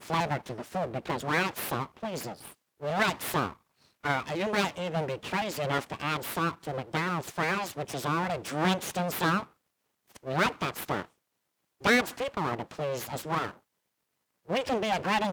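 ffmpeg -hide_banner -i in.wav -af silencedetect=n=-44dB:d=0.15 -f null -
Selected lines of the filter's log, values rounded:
silence_start: 2.52
silence_end: 2.81 | silence_duration: 0.28
silence_start: 3.54
silence_end: 4.04 | silence_duration: 0.50
silence_start: 9.44
silence_end: 10.11 | silence_duration: 0.67
silence_start: 11.05
silence_end: 11.81 | silence_duration: 0.76
silence_start: 13.53
silence_end: 14.49 | silence_duration: 0.95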